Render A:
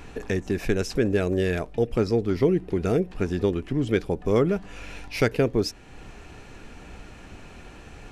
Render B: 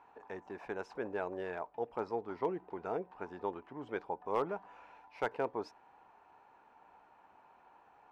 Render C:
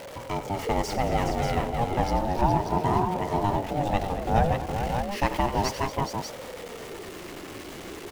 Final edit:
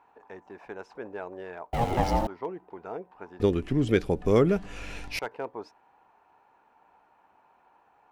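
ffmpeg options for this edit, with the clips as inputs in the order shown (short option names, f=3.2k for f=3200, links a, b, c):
-filter_complex "[1:a]asplit=3[a][b][c];[a]atrim=end=1.732[d];[2:a]atrim=start=1.728:end=2.272[e];[b]atrim=start=2.268:end=3.402[f];[0:a]atrim=start=3.398:end=5.192[g];[c]atrim=start=5.188[h];[d][e]acrossfade=d=0.004:c1=hsin:c2=hsin[i];[i][f]acrossfade=d=0.004:c1=hsin:c2=hsin[j];[j][g]acrossfade=d=0.004:c1=hsin:c2=hsin[k];[k][h]acrossfade=d=0.004:c1=hsin:c2=hsin"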